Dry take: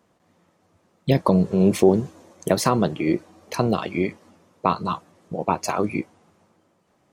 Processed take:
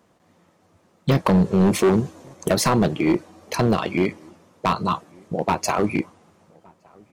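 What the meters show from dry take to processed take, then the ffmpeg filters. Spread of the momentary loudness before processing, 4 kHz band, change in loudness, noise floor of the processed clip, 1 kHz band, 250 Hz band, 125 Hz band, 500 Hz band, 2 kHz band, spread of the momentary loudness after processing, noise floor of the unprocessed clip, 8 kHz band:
14 LU, +3.5 dB, +1.0 dB, −61 dBFS, +1.0 dB, +1.5 dB, +2.0 dB, 0.0 dB, +4.0 dB, 12 LU, −65 dBFS, +3.5 dB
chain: -filter_complex "[0:a]asoftclip=type=hard:threshold=-16dB,asplit=2[link_01][link_02];[link_02]adelay=1166,volume=-28dB,highshelf=frequency=4000:gain=-26.2[link_03];[link_01][link_03]amix=inputs=2:normalize=0,volume=3.5dB"

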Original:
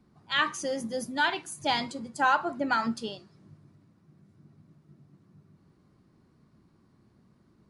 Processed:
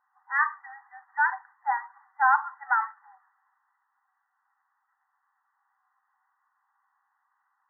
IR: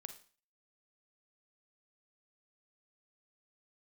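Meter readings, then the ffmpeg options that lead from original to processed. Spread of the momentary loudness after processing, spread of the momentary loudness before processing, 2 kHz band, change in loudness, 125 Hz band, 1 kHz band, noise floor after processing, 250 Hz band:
15 LU, 11 LU, +3.0 dB, +2.0 dB, below −40 dB, +3.0 dB, −77 dBFS, below −40 dB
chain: -af "acrusher=bits=5:mode=log:mix=0:aa=0.000001,afftfilt=real='re*between(b*sr/4096,750,2000)':imag='im*between(b*sr/4096,750,2000)':win_size=4096:overlap=0.75,volume=3dB"

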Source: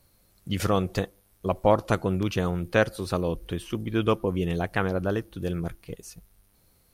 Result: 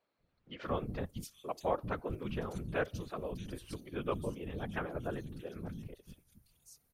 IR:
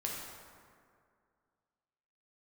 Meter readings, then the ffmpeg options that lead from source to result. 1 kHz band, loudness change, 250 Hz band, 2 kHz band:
−11.0 dB, −12.5 dB, −13.5 dB, −12.0 dB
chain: -filter_complex "[0:a]acrossover=split=230|3700[link_01][link_02][link_03];[link_01]adelay=190[link_04];[link_03]adelay=630[link_05];[link_04][link_02][link_05]amix=inputs=3:normalize=0,afftfilt=real='hypot(re,im)*cos(2*PI*random(0))':imag='hypot(re,im)*sin(2*PI*random(1))':win_size=512:overlap=0.75,volume=-5.5dB"

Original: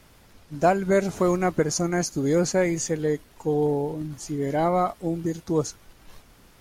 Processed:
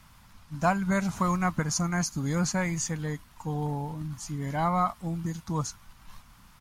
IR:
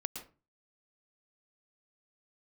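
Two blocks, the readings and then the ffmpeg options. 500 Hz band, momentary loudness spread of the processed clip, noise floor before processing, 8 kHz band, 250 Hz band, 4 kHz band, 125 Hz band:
−12.5 dB, 9 LU, −55 dBFS, −2.0 dB, −4.0 dB, −2.0 dB, 0.0 dB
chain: -af "firequalizer=gain_entry='entry(200,0);entry(380,-18);entry(1000,4);entry(1700,-2)':delay=0.05:min_phase=1"

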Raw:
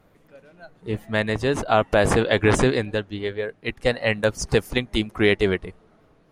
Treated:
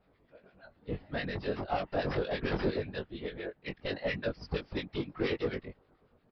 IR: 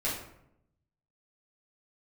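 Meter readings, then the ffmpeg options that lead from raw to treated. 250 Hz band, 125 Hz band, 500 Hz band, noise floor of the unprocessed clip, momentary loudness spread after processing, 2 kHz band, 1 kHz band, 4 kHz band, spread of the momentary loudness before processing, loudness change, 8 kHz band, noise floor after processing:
−12.0 dB, −13.0 dB, −13.0 dB, −58 dBFS, 9 LU, −14.5 dB, −13.0 dB, −13.5 dB, 11 LU, −13.0 dB, below −30 dB, −70 dBFS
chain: -filter_complex "[0:a]aresample=11025,asoftclip=type=tanh:threshold=-16.5dB,aresample=44100,afftfilt=real='hypot(re,im)*cos(2*PI*random(0))':imag='hypot(re,im)*sin(2*PI*random(1))':win_size=512:overlap=0.75,asplit=2[link_01][link_02];[link_02]adelay=21,volume=-4dB[link_03];[link_01][link_03]amix=inputs=2:normalize=0,acrossover=split=1300[link_04][link_05];[link_04]aeval=exprs='val(0)*(1-0.7/2+0.7/2*cos(2*PI*8.6*n/s))':channel_layout=same[link_06];[link_05]aeval=exprs='val(0)*(1-0.7/2-0.7/2*cos(2*PI*8.6*n/s))':channel_layout=same[link_07];[link_06][link_07]amix=inputs=2:normalize=0,volume=-2dB"

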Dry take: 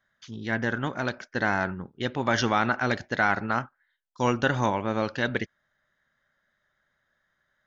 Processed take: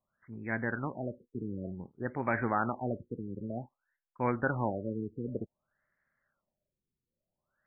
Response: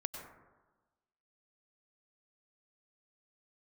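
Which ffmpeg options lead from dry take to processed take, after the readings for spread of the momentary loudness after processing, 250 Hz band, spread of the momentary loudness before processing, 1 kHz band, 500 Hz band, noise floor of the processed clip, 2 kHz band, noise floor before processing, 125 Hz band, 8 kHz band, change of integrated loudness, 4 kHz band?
11 LU, −6.0 dB, 9 LU, −9.0 dB, −7.0 dB, below −85 dBFS, −11.5 dB, −76 dBFS, −6.0 dB, can't be measured, −8.5 dB, below −40 dB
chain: -af "afftfilt=real='re*lt(b*sr/1024,470*pow(2600/470,0.5+0.5*sin(2*PI*0.54*pts/sr)))':imag='im*lt(b*sr/1024,470*pow(2600/470,0.5+0.5*sin(2*PI*0.54*pts/sr)))':win_size=1024:overlap=0.75,volume=-6dB"

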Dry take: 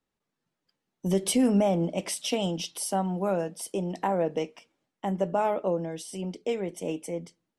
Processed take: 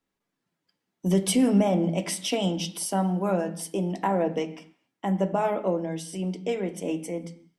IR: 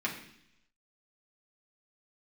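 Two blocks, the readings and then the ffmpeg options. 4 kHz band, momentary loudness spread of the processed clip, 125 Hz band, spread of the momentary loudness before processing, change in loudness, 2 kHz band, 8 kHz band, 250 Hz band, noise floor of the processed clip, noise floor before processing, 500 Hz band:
+2.0 dB, 11 LU, +4.0 dB, 12 LU, +2.0 dB, +2.5 dB, +1.5 dB, +3.0 dB, −83 dBFS, −85 dBFS, +1.0 dB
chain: -filter_complex "[0:a]asplit=2[link_01][link_02];[1:a]atrim=start_sample=2205,afade=type=out:start_time=0.31:duration=0.01,atrim=end_sample=14112,asetrate=40131,aresample=44100[link_03];[link_02][link_03]afir=irnorm=-1:irlink=0,volume=-9.5dB[link_04];[link_01][link_04]amix=inputs=2:normalize=0,volume=-1dB"

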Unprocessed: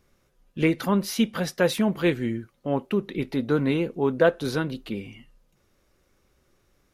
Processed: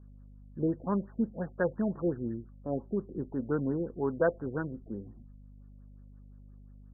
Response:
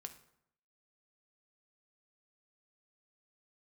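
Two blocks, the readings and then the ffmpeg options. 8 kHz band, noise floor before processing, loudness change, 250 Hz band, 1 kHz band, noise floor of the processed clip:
below −40 dB, −67 dBFS, −8.0 dB, −7.5 dB, −8.5 dB, −52 dBFS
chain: -af "aeval=exprs='val(0)+0.00708*(sin(2*PI*50*n/s)+sin(2*PI*2*50*n/s)/2+sin(2*PI*3*50*n/s)/3+sin(2*PI*4*50*n/s)/4+sin(2*PI*5*50*n/s)/5)':channel_layout=same,afftfilt=real='re*lt(b*sr/1024,700*pow(1900/700,0.5+0.5*sin(2*PI*5.7*pts/sr)))':imag='im*lt(b*sr/1024,700*pow(1900/700,0.5+0.5*sin(2*PI*5.7*pts/sr)))':win_size=1024:overlap=0.75,volume=-7.5dB"

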